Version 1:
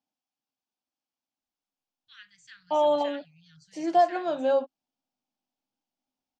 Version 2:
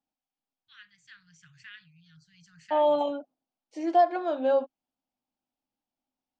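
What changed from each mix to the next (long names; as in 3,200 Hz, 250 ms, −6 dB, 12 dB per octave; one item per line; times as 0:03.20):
first voice: entry −1.40 s
master: add high-shelf EQ 5,000 Hz −11 dB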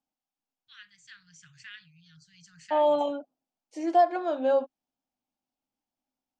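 second voice: add parametric band 4,100 Hz −4.5 dB 1.4 octaves
master: add high-shelf EQ 5,000 Hz +11 dB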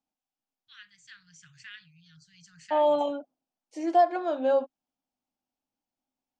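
nothing changed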